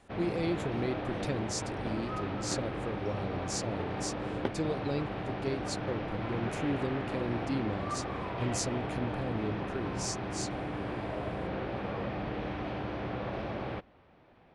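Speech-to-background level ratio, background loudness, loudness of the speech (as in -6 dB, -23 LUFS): -0.5 dB, -36.5 LUFS, -37.0 LUFS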